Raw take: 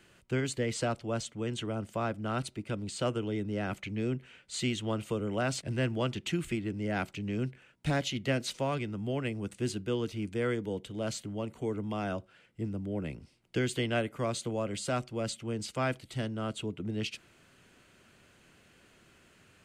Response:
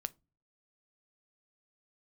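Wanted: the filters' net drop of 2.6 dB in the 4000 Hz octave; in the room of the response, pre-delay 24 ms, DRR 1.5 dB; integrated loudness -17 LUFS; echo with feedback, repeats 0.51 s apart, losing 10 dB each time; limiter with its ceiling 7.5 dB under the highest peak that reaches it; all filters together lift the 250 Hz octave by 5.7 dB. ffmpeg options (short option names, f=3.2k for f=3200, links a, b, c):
-filter_complex "[0:a]equalizer=f=250:t=o:g=7,equalizer=f=4k:t=o:g=-3.5,alimiter=limit=-23.5dB:level=0:latency=1,aecho=1:1:510|1020|1530|2040:0.316|0.101|0.0324|0.0104,asplit=2[a][b];[1:a]atrim=start_sample=2205,adelay=24[c];[b][c]afir=irnorm=-1:irlink=0,volume=0dB[d];[a][d]amix=inputs=2:normalize=0,volume=14dB"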